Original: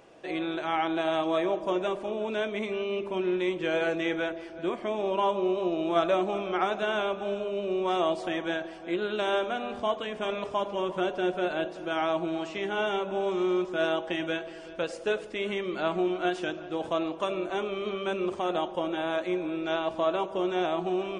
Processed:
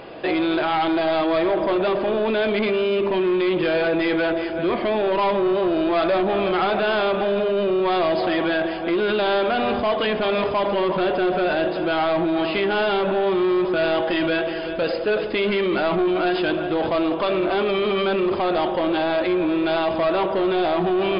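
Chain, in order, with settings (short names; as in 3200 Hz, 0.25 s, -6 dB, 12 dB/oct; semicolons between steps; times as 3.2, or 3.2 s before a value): in parallel at -2 dB: negative-ratio compressor -35 dBFS, ratio -1; on the sum: soft clip -24.5 dBFS, distortion -12 dB; brick-wall FIR low-pass 5100 Hz; gain +9 dB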